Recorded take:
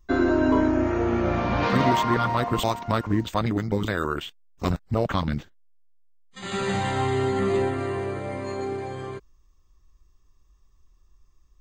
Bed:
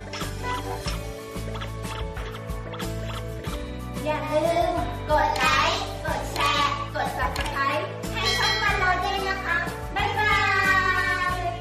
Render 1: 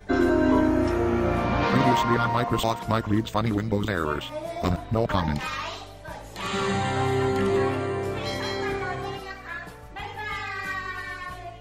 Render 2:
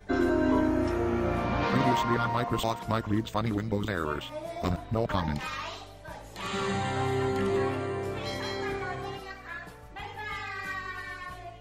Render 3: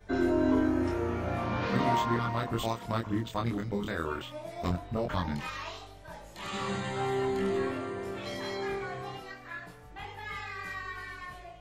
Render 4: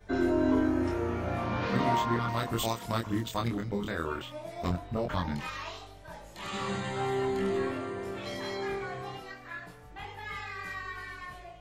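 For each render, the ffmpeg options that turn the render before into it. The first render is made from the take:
-filter_complex "[1:a]volume=0.282[s0];[0:a][s0]amix=inputs=2:normalize=0"
-af "volume=0.596"
-af "flanger=delay=22.5:depth=3.7:speed=0.19"
-filter_complex "[0:a]asettb=1/sr,asplit=3[s0][s1][s2];[s0]atrim=end=2.284[s3];[s1]atrim=start=2.28:end=3.48,asetpts=PTS-STARTPTS,afade=t=in:d=0.004:c=qsin,afade=t=out:st=1.196:d=0.004:c=qsin,highshelf=f=4400:g=10.5[s4];[s2]atrim=start=3.476[s5];[s3][s4]acrossfade=d=0.004:c1=hsin:c2=qsin[s6];[s6][s5]acrossfade=d=0.004:c1=qsin:c2=hsin"

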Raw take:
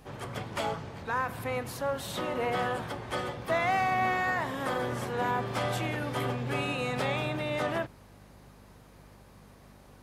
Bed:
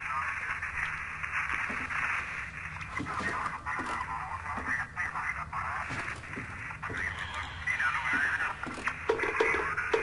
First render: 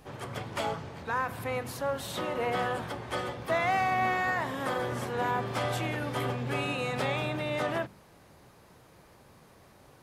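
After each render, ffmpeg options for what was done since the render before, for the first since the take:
-af "bandreject=f=50:t=h:w=4,bandreject=f=100:t=h:w=4,bandreject=f=150:t=h:w=4,bandreject=f=200:t=h:w=4,bandreject=f=250:t=h:w=4"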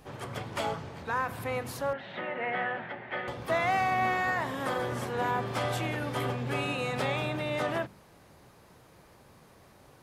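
-filter_complex "[0:a]asettb=1/sr,asplit=3[s0][s1][s2];[s0]atrim=end=1.934[s3];[s1]atrim=start=1.93:end=3.28,asetpts=PTS-STARTPTS,afade=t=in:d=0.004:c=qsin,afade=t=out:st=1.346:d=0.004:c=qsin,highpass=210,equalizer=f=300:t=q:w=4:g=-7,equalizer=f=460:t=q:w=4:g=-6,equalizer=f=1100:t=q:w=4:g=-9,equalizer=f=1900:t=q:w=4:g=8,lowpass=f=2800:w=0.5412,lowpass=f=2800:w=1.3066[s4];[s2]atrim=start=3.276[s5];[s3][s4]acrossfade=d=0.004:c1=hsin:c2=qsin[s6];[s6][s5]acrossfade=d=0.004:c1=qsin:c2=hsin"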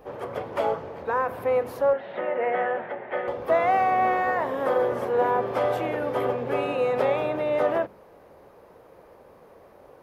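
-af "equalizer=f=125:t=o:w=1:g=-6,equalizer=f=500:t=o:w=1:g=12,equalizer=f=1000:t=o:w=1:g=3,equalizer=f=4000:t=o:w=1:g=-5,equalizer=f=8000:t=o:w=1:g=-11"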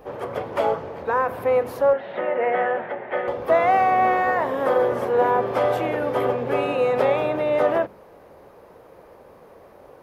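-af "volume=1.5"

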